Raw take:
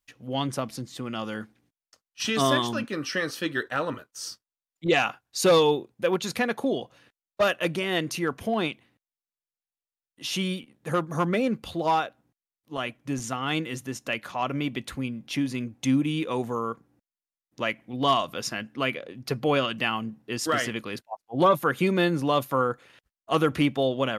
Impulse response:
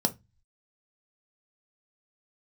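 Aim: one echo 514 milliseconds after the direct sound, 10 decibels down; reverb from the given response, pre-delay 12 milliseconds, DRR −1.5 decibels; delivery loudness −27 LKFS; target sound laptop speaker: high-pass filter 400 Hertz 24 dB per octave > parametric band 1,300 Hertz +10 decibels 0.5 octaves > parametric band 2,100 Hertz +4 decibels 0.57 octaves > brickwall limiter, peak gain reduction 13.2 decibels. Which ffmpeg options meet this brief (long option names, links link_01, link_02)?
-filter_complex "[0:a]aecho=1:1:514:0.316,asplit=2[link_01][link_02];[1:a]atrim=start_sample=2205,adelay=12[link_03];[link_02][link_03]afir=irnorm=-1:irlink=0,volume=-6.5dB[link_04];[link_01][link_04]amix=inputs=2:normalize=0,highpass=frequency=400:width=0.5412,highpass=frequency=400:width=1.3066,equalizer=frequency=1300:width_type=o:width=0.5:gain=10,equalizer=frequency=2100:width_type=o:width=0.57:gain=4,volume=-2dB,alimiter=limit=-15dB:level=0:latency=1"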